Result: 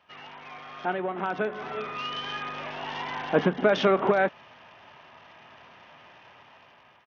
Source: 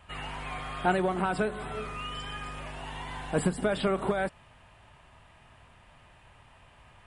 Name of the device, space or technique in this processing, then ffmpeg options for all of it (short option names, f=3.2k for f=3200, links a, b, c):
Bluetooth headset: -af "highpass=240,dynaudnorm=f=580:g=5:m=14dB,aresample=8000,aresample=44100,volume=-5.5dB" -ar 48000 -c:a sbc -b:a 64k